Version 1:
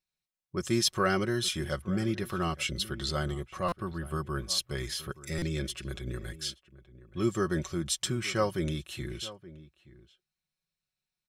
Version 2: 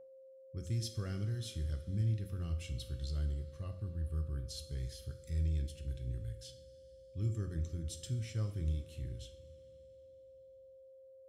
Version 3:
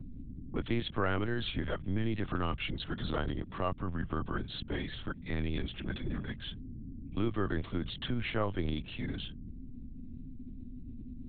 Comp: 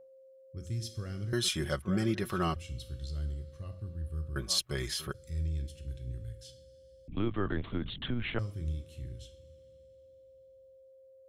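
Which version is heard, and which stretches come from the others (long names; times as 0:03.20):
2
0:01.33–0:02.56: punch in from 1
0:04.36–0:05.14: punch in from 1
0:07.08–0:08.39: punch in from 3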